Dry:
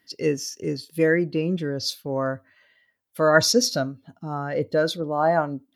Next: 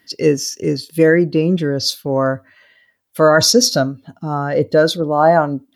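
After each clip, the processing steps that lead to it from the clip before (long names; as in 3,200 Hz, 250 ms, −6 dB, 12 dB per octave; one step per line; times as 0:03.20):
dynamic equaliser 2,300 Hz, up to −5 dB, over −44 dBFS, Q 2.2
boost into a limiter +10 dB
level −1 dB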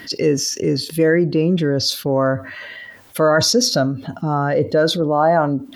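high-shelf EQ 5,400 Hz −7 dB
envelope flattener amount 50%
level −4.5 dB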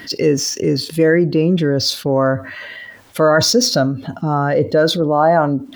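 running median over 3 samples
level +2 dB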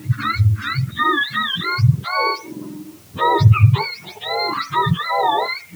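frequency axis turned over on the octave scale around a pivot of 770 Hz
in parallel at −7 dB: bit-depth reduction 6 bits, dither triangular
on the sum: level −6 dB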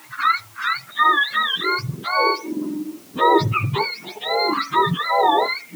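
high-pass filter sweep 930 Hz → 260 Hz, 0:00.62–0:02.14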